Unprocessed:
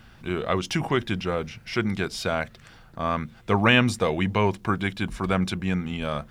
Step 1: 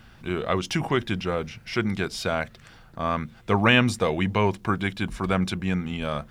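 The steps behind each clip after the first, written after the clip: no audible change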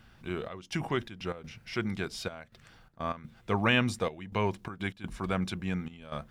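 trance gate "xxxx..xxx.x.xxx" 125 bpm -12 dB; trim -7 dB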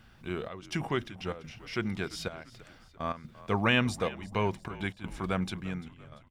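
fade out at the end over 0.90 s; frequency-shifting echo 343 ms, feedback 47%, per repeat -44 Hz, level -18 dB

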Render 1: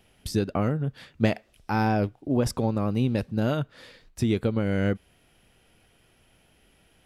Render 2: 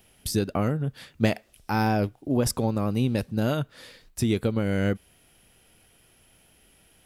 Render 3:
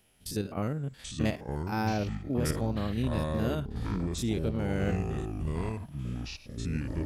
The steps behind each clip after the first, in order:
treble shelf 6.8 kHz +12 dB
spectrogram pixelated in time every 50 ms; ever faster or slower copies 675 ms, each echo -6 st, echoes 3; trim -6 dB

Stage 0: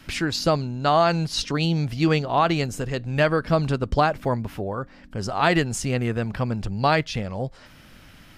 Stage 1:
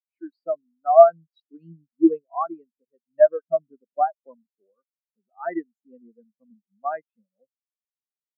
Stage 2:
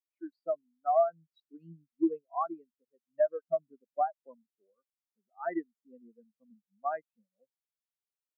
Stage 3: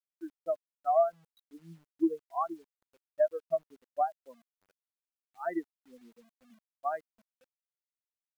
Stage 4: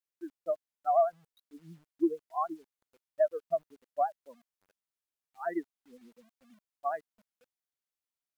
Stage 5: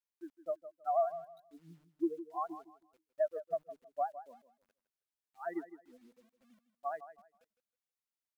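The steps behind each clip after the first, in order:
high-pass 190 Hz 24 dB/octave; dynamic bell 1.6 kHz, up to +5 dB, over -34 dBFS, Q 1.5; spectral contrast expander 4:1
compression 3:1, threshold -20 dBFS, peak gain reduction 11 dB; trim -5 dB
bit crusher 11-bit
vibrato 9.4 Hz 66 cents
feedback delay 159 ms, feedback 25%, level -13.5 dB; trim -5.5 dB

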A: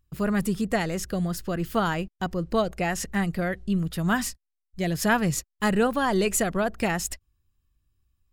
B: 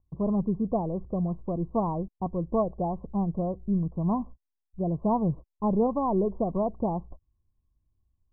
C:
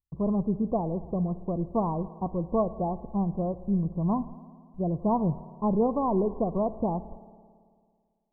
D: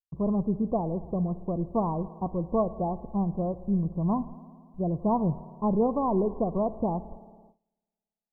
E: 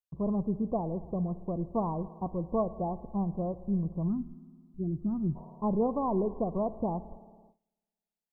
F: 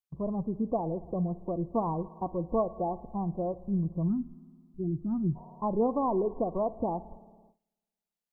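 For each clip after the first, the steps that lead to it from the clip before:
Chebyshev low-pass 1.1 kHz, order 8; trim -1 dB
gate with hold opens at -58 dBFS; spring tank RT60 2 s, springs 55 ms, chirp 70 ms, DRR 15 dB
gate with hold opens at -46 dBFS
time-frequency box 4.08–5.36 s, 400–1200 Hz -22 dB; trim -3.5 dB
spectral noise reduction 7 dB; in parallel at 0 dB: compression, threshold -39 dBFS, peak gain reduction 14 dB

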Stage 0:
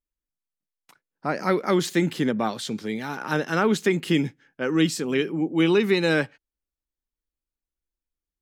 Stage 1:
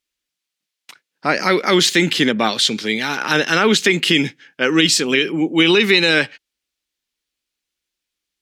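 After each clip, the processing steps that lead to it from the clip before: frequency weighting D; peak limiter -11 dBFS, peak gain reduction 7 dB; trim +7.5 dB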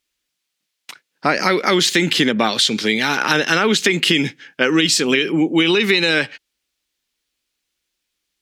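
compression 4:1, threshold -18 dBFS, peak gain reduction 8 dB; trim +5 dB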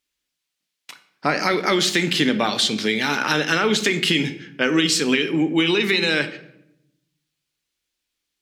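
simulated room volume 220 m³, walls mixed, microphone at 0.37 m; trim -4 dB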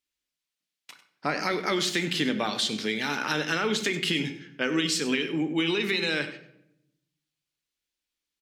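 delay 98 ms -15 dB; trim -7.5 dB

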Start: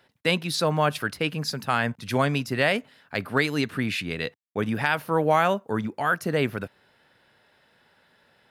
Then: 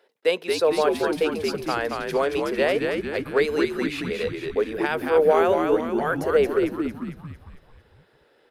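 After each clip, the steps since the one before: resonant high-pass 440 Hz, resonance Q 4.9; on a send: frequency-shifting echo 226 ms, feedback 53%, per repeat -80 Hz, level -4 dB; on the sum: trim -4.5 dB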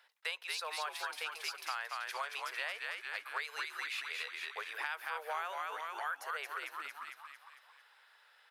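high-pass 970 Hz 24 dB/octave; compression 3:1, threshold -40 dBFS, peak gain reduction 13 dB; trim +1 dB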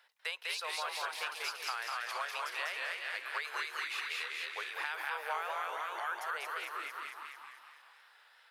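modulated delay 195 ms, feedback 42%, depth 116 cents, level -3 dB

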